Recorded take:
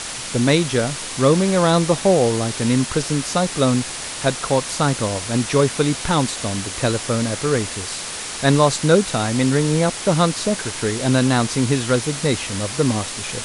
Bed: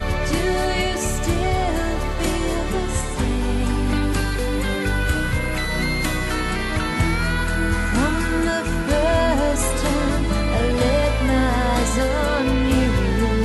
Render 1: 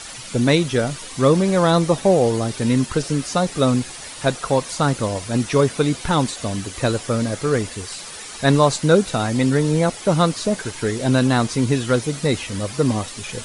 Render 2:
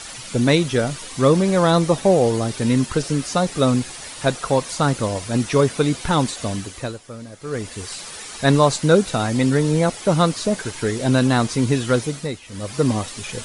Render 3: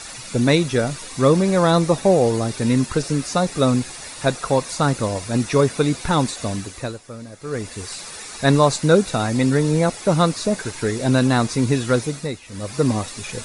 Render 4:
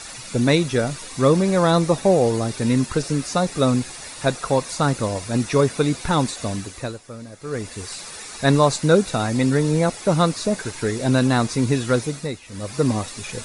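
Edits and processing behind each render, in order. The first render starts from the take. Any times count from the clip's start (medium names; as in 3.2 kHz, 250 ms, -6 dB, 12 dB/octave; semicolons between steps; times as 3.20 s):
noise reduction 10 dB, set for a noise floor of -30 dBFS
6.51–7.87 s: dip -14.5 dB, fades 0.48 s; 12.02–12.80 s: dip -15.5 dB, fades 0.39 s
band-stop 3.1 kHz, Q 9.1
trim -1 dB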